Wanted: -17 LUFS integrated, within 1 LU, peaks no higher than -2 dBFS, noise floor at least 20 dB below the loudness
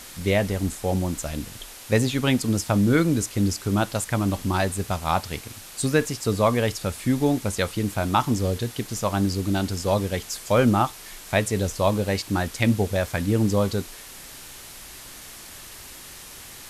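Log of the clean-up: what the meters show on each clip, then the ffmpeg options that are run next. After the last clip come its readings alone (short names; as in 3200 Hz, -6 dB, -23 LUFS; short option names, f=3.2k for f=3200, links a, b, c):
noise floor -42 dBFS; noise floor target -44 dBFS; loudness -24.0 LUFS; peak -6.0 dBFS; loudness target -17.0 LUFS
-> -af "afftdn=nr=6:nf=-42"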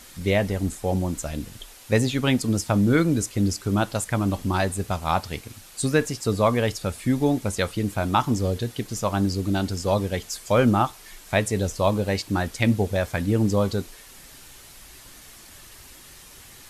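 noise floor -47 dBFS; loudness -24.0 LUFS; peak -6.0 dBFS; loudness target -17.0 LUFS
-> -af "volume=7dB,alimiter=limit=-2dB:level=0:latency=1"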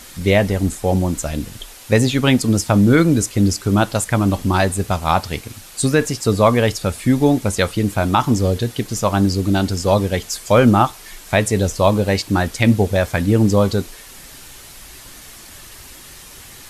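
loudness -17.5 LUFS; peak -2.0 dBFS; noise floor -40 dBFS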